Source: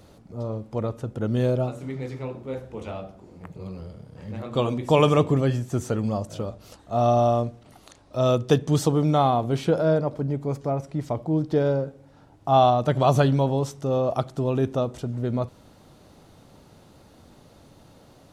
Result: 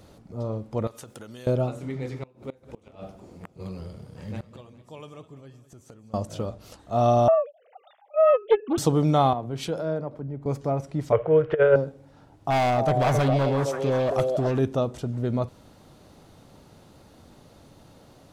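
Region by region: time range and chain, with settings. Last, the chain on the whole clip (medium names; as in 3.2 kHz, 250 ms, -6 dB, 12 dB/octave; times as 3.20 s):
0.87–1.47 s: tilt EQ +4 dB/octave + compression 16:1, threshold -37 dBFS
2.22–6.14 s: inverted gate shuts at -24 dBFS, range -25 dB + treble shelf 4 kHz +6.5 dB + modulated delay 204 ms, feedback 49%, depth 102 cents, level -16 dB
7.28–8.78 s: formants replaced by sine waves + peaking EQ 810 Hz +13.5 dB 0.23 oct + loudspeaker Doppler distortion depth 0.29 ms
9.33–10.46 s: compression 2:1, threshold -31 dBFS + three bands expanded up and down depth 100%
11.12–11.76 s: FFT filter 110 Hz 0 dB, 280 Hz -17 dB, 460 Hz +14 dB, 800 Hz -2 dB, 1.4 kHz +14 dB, 2.9 kHz +9 dB, 4.1 kHz -15 dB, 11 kHz -27 dB + compressor with a negative ratio -16 dBFS, ratio -0.5
12.50–14.59 s: overload inside the chain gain 19.5 dB + repeats whose band climbs or falls 266 ms, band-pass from 500 Hz, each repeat 1.4 oct, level 0 dB
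whole clip: none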